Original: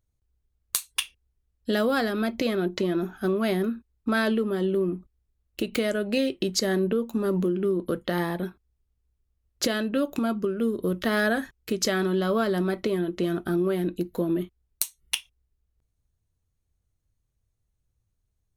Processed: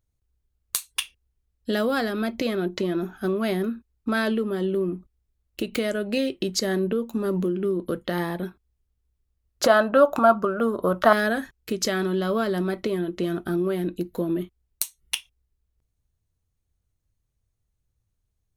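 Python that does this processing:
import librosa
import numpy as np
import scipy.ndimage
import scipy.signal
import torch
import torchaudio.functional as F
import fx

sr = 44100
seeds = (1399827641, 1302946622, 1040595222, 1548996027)

y = fx.band_shelf(x, sr, hz=920.0, db=16.0, octaves=1.7, at=(9.64, 11.13))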